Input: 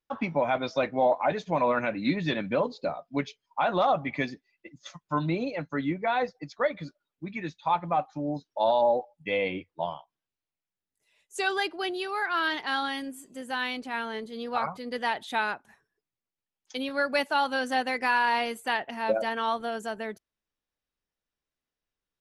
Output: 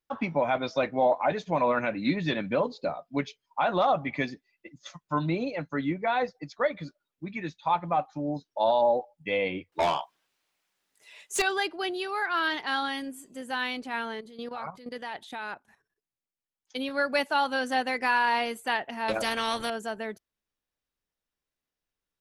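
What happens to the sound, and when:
0:09.72–0:11.42: mid-hump overdrive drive 25 dB, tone 5,500 Hz, clips at −16.5 dBFS
0:14.13–0:16.76: output level in coarse steps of 12 dB
0:19.08–0:19.70: every bin compressed towards the loudest bin 2 to 1

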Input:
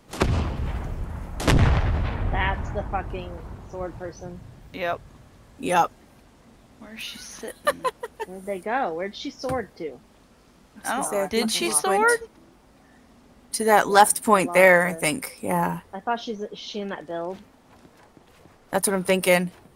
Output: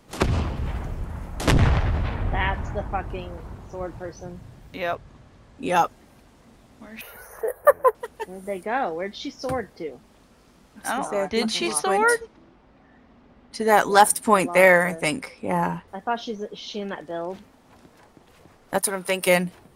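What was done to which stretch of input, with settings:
0:04.95–0:05.74: high-frequency loss of the air 57 metres
0:07.01–0:07.95: drawn EQ curve 100 Hz 0 dB, 290 Hz −18 dB, 430 Hz +11 dB, 1,700 Hz +3 dB, 3,500 Hz −23 dB, 7,500 Hz −14 dB, 14,000 Hz +11 dB
0:10.98–0:15.88: low-pass that shuts in the quiet parts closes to 2,900 Hz, open at −14 dBFS
0:18.78–0:19.27: low-shelf EQ 390 Hz −11 dB

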